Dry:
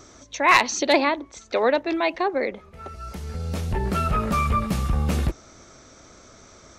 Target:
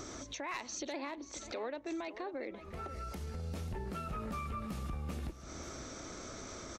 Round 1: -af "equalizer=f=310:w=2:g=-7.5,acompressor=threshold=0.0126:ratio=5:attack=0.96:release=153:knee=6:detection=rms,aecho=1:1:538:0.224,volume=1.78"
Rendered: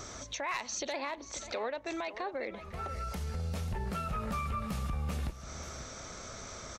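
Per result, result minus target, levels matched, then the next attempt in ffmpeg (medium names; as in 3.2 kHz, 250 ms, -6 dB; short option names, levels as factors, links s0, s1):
compression: peak gain reduction -5 dB; 250 Hz band -3.5 dB
-af "equalizer=f=310:w=2:g=-7.5,acompressor=threshold=0.00631:ratio=5:attack=0.96:release=153:knee=6:detection=rms,aecho=1:1:538:0.224,volume=1.78"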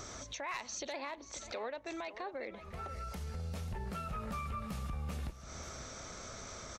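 250 Hz band -3.5 dB
-af "equalizer=f=310:w=2:g=3.5,acompressor=threshold=0.00631:ratio=5:attack=0.96:release=153:knee=6:detection=rms,aecho=1:1:538:0.224,volume=1.78"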